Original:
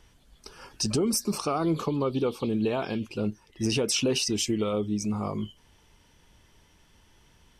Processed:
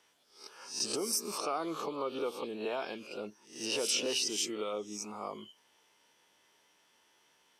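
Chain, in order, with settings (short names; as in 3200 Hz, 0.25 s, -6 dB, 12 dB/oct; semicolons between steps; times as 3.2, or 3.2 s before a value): spectral swells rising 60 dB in 0.44 s; HPF 440 Hz 12 dB/oct; gain -6 dB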